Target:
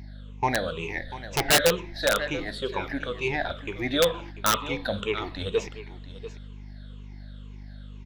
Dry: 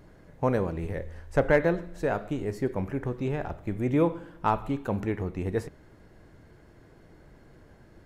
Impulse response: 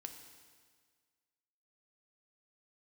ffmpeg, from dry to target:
-af "afftfilt=real='re*pow(10,21/40*sin(2*PI*(0.74*log(max(b,1)*sr/1024/100)/log(2)-(-2.1)*(pts-256)/sr)))':imag='im*pow(10,21/40*sin(2*PI*(0.74*log(max(b,1)*sr/1024/100)/log(2)-(-2.1)*(pts-256)/sr)))':win_size=1024:overlap=0.75,aemphasis=mode=production:type=riaa,asoftclip=type=tanh:threshold=0.376,agate=range=0.447:threshold=0.00708:ratio=16:detection=peak,lowpass=f=3600:t=q:w=5.2,asubboost=boost=4.5:cutoff=69,aecho=1:1:692:0.188,aeval=exprs='val(0)+0.01*(sin(2*PI*50*n/s)+sin(2*PI*2*50*n/s)/2+sin(2*PI*3*50*n/s)/3+sin(2*PI*4*50*n/s)/4+sin(2*PI*5*50*n/s)/5)':c=same,aeval=exprs='(mod(3.98*val(0)+1,2)-1)/3.98':c=same"

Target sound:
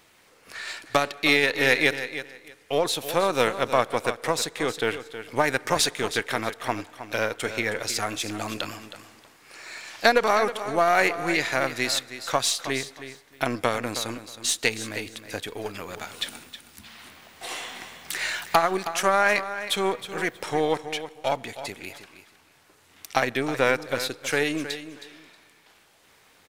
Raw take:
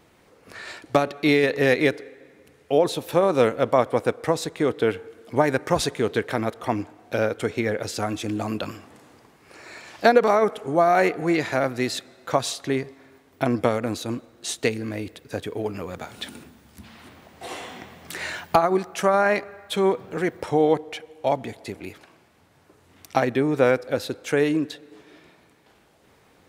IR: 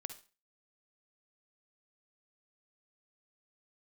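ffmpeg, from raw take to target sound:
-filter_complex "[0:a]aeval=exprs='if(lt(val(0),0),0.708*val(0),val(0))':c=same,tiltshelf=f=940:g=-7,asplit=2[s0][s1];[s1]aecho=0:1:317|634:0.251|0.0477[s2];[s0][s2]amix=inputs=2:normalize=0"

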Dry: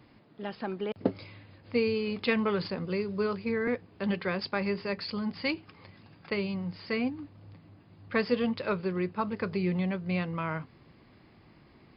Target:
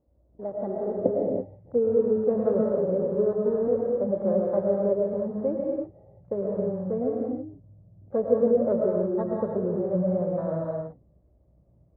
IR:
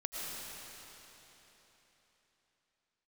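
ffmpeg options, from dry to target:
-filter_complex "[0:a]aeval=exprs='val(0)+0.00141*(sin(2*PI*60*n/s)+sin(2*PI*2*60*n/s)/2+sin(2*PI*3*60*n/s)/3+sin(2*PI*4*60*n/s)/4+sin(2*PI*5*60*n/s)/5)':c=same,lowpass=f=580:t=q:w=4.9,afwtdn=0.0126[s0];[1:a]atrim=start_sample=2205,afade=t=out:st=0.39:d=0.01,atrim=end_sample=17640[s1];[s0][s1]afir=irnorm=-1:irlink=0"

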